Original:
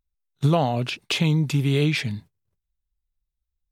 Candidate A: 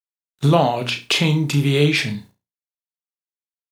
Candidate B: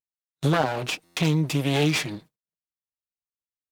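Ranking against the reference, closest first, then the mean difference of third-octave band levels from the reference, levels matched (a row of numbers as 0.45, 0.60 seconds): A, B; 3.5, 6.5 decibels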